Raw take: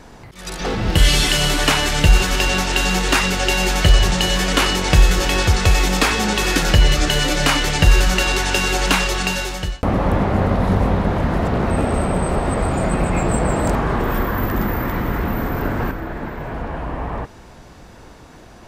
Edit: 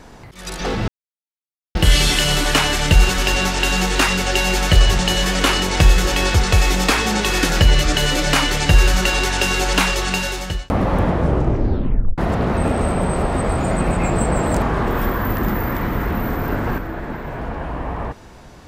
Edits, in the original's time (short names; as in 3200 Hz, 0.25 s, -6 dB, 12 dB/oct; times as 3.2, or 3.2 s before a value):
0.88 insert silence 0.87 s
10.14 tape stop 1.17 s